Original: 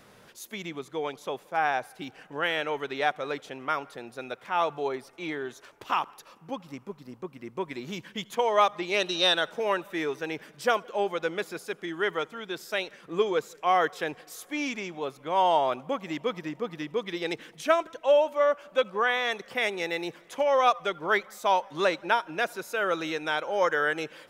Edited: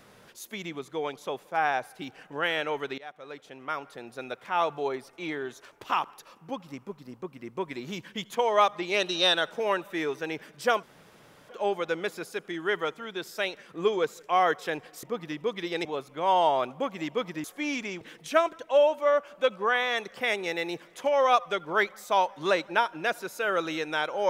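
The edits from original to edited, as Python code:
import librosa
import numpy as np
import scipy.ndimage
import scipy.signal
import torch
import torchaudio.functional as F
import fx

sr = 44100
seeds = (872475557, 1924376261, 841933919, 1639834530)

y = fx.edit(x, sr, fx.fade_in_from(start_s=2.98, length_s=1.22, floor_db=-23.0),
    fx.insert_room_tone(at_s=10.83, length_s=0.66),
    fx.swap(start_s=14.37, length_s=0.57, other_s=16.53, other_length_s=0.82), tone=tone)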